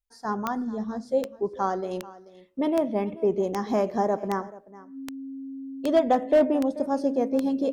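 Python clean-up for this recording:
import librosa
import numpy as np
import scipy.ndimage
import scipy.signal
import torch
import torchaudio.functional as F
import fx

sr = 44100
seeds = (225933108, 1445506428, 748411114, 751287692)

y = fx.fix_declip(x, sr, threshold_db=-12.5)
y = fx.fix_declick_ar(y, sr, threshold=10.0)
y = fx.notch(y, sr, hz=270.0, q=30.0)
y = fx.fix_echo_inverse(y, sr, delay_ms=435, level_db=-19.0)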